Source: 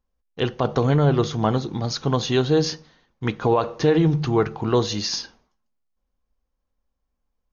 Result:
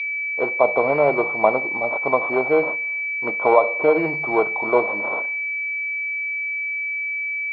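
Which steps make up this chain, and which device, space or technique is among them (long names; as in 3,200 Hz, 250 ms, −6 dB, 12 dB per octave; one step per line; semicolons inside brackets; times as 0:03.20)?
toy sound module (linearly interpolated sample-rate reduction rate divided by 4×; switching amplifier with a slow clock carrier 2,300 Hz; loudspeaker in its box 520–4,500 Hz, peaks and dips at 610 Hz +10 dB, 1,000 Hz +6 dB, 1,700 Hz −10 dB, 2,400 Hz +4 dB, 3,700 Hz +6 dB)
level +4.5 dB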